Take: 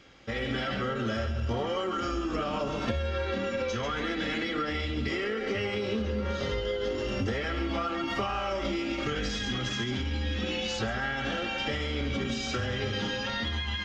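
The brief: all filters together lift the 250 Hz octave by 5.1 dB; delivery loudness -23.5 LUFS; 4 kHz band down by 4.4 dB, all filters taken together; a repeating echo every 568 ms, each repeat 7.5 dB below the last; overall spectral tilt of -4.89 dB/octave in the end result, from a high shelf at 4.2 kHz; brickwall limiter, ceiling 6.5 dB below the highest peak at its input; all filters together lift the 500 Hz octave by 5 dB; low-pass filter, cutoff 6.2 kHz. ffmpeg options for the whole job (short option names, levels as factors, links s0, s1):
-af "lowpass=6200,equalizer=f=250:t=o:g=5,equalizer=f=500:t=o:g=4.5,equalizer=f=4000:t=o:g=-8.5,highshelf=f=4200:g=5,alimiter=limit=0.1:level=0:latency=1,aecho=1:1:568|1136|1704|2272|2840:0.422|0.177|0.0744|0.0312|0.0131,volume=1.78"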